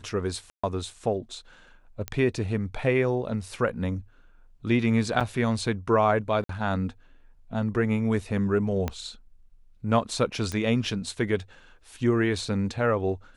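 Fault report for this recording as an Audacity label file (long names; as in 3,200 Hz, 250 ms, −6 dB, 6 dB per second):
0.500000	0.640000	drop-out 135 ms
2.080000	2.080000	click −15 dBFS
5.200000	5.210000	drop-out 6.9 ms
6.440000	6.490000	drop-out 53 ms
8.880000	8.880000	click −14 dBFS
10.520000	10.520000	click −17 dBFS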